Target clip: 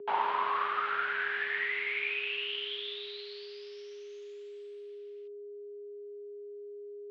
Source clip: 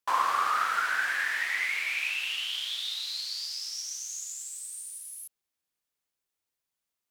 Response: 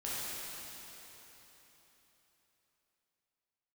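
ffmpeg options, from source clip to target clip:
-af "aemphasis=mode=production:type=50kf,aeval=exprs='val(0)+0.0141*sin(2*PI*550*n/s)':channel_layout=same,asubboost=boost=11.5:cutoff=220,highpass=frequency=300:width_type=q:width=0.5412,highpass=frequency=300:width_type=q:width=1.307,lowpass=frequency=3400:width_type=q:width=0.5176,lowpass=frequency=3400:width_type=q:width=0.7071,lowpass=frequency=3400:width_type=q:width=1.932,afreqshift=-140,volume=-4dB"

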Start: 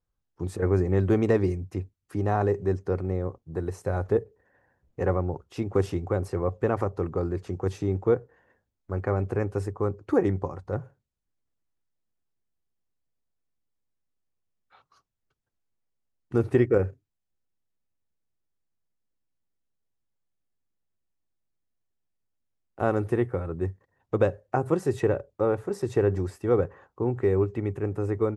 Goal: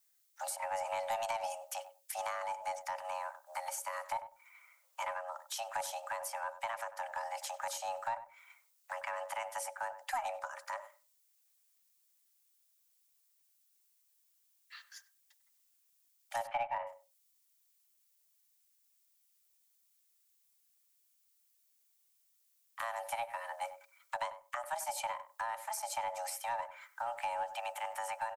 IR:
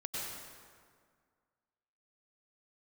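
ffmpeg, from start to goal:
-filter_complex "[0:a]asettb=1/sr,asplit=3[link_01][link_02][link_03];[link_01]atrim=end=16.474[link_04];[link_02]atrim=start=16.47:end=16.87,asetpts=PTS-STARTPTS,afade=type=in:duration=0.004:curve=qsin,afade=type=out:start_time=0.396:duration=0.004:curve=qsin,lowpass=frequency=2200:width=0.5412,lowpass=frequency=2200:width=1.3066[link_05];[link_03]atrim=start=16.866[link_06];[link_04][link_05]acrossfade=duration=0.004:curve1=hsin:curve2=qsin[link_07];[link_07][link_06]acrossfade=duration=0.004:curve1=qsin:curve2=hsin,asettb=1/sr,asplit=3[link_08][link_09][link_10];[link_08]atrim=end=24.554[link_11];[link_09]atrim=start=24.55:end=24.97,asetpts=PTS-STARTPTS,afade=type=in:duration=0.004:curve=qsin,afade=type=out:start_time=0.416:duration=0.004:curve=qsin,agate=range=-33dB:threshold=-28dB:ratio=3:detection=peak[link_12];[link_10]atrim=start=24.966[link_13];[link_11][link_12]acrossfade=duration=0.004:curve1=hsin:curve2=qsin[link_14];[link_14][link_13]acrossfade=duration=0.004:curve1=qsin:curve2=hsin,aderivative,acrossover=split=270[link_15][link_16];[link_16]acompressor=threshold=-58dB:ratio=10[link_17];[link_15][link_17]amix=inputs=2:normalize=0,afreqshift=460,asplit=2[link_18][link_19];[link_19]aeval=exprs='clip(val(0),-1,0.00224)':channel_layout=same,volume=-7.5dB[link_20];[link_18][link_20]amix=inputs=2:normalize=0,asplit=2[link_21][link_22];[link_22]adelay=97,lowpass=frequency=1200:poles=1,volume=-11.5dB,asplit=2[link_23][link_24];[link_24]adelay=97,lowpass=frequency=1200:poles=1,volume=0.15[link_25];[link_21][link_23][link_25]amix=inputs=3:normalize=0,volume=16.5dB"

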